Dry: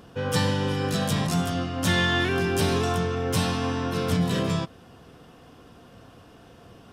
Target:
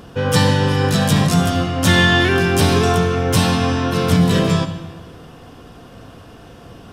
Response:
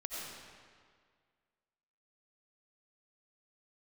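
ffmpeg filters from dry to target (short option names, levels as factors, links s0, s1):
-filter_complex "[0:a]asplit=2[s0][s1];[1:a]atrim=start_sample=2205,asetrate=57330,aresample=44100,lowshelf=f=150:g=10.5[s2];[s1][s2]afir=irnorm=-1:irlink=0,volume=0.447[s3];[s0][s3]amix=inputs=2:normalize=0,volume=2.24"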